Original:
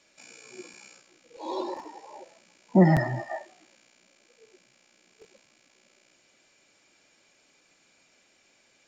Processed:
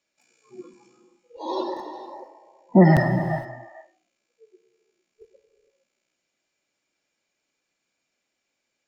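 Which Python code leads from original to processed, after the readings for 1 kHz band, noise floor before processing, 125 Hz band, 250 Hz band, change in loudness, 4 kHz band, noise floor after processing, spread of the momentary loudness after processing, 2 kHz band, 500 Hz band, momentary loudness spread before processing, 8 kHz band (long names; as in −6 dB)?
+5.0 dB, −65 dBFS, +5.0 dB, +4.5 dB, +5.0 dB, +3.0 dB, −80 dBFS, 22 LU, +5.0 dB, +5.0 dB, 25 LU, can't be measured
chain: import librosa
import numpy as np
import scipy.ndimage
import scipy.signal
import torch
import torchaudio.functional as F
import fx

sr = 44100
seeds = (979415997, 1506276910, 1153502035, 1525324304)

y = fx.noise_reduce_blind(x, sr, reduce_db=20)
y = fx.rev_gated(y, sr, seeds[0], gate_ms=490, shape='flat', drr_db=9.0)
y = y * 10.0 ** (4.5 / 20.0)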